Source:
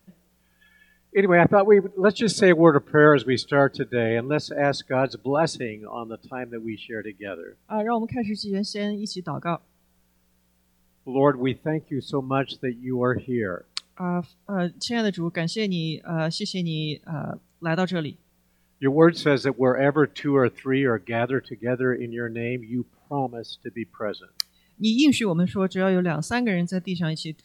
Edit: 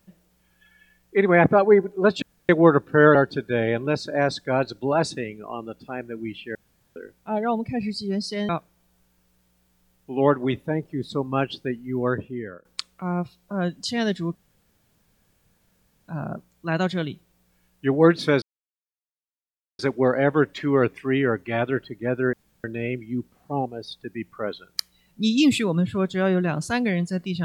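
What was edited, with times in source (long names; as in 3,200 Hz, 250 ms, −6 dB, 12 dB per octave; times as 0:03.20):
0:02.22–0:02.49: fill with room tone
0:03.15–0:03.58: remove
0:06.98–0:07.39: fill with room tone
0:08.92–0:09.47: remove
0:12.97–0:13.63: fade out, to −18.5 dB
0:15.33–0:17.06: fill with room tone
0:19.40: splice in silence 1.37 s
0:21.94–0:22.25: fill with room tone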